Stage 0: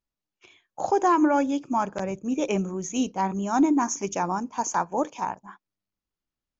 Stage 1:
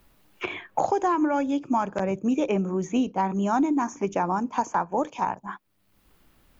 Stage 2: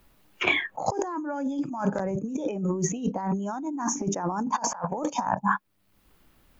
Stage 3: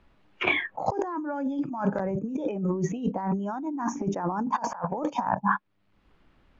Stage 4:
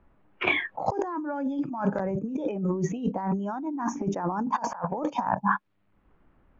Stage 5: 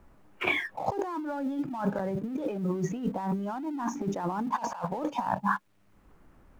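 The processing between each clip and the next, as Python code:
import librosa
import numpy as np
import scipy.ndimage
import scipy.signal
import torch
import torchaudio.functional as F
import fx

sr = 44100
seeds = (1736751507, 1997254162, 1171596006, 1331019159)

y1 = fx.peak_eq(x, sr, hz=6000.0, db=-9.5, octaves=1.2)
y1 = fx.band_squash(y1, sr, depth_pct=100)
y2 = fx.noise_reduce_blind(y1, sr, reduce_db=14)
y2 = fx.spec_box(y2, sr, start_s=4.57, length_s=0.3, low_hz=490.0, high_hz=5600.0, gain_db=7)
y2 = fx.over_compress(y2, sr, threshold_db=-34.0, ratio=-1.0)
y2 = y2 * librosa.db_to_amplitude(5.0)
y3 = scipy.signal.sosfilt(scipy.signal.butter(2, 3100.0, 'lowpass', fs=sr, output='sos'), y2)
y4 = fx.env_lowpass(y3, sr, base_hz=1500.0, full_db=-22.0)
y5 = fx.law_mismatch(y4, sr, coded='mu')
y5 = y5 * librosa.db_to_amplitude(-3.5)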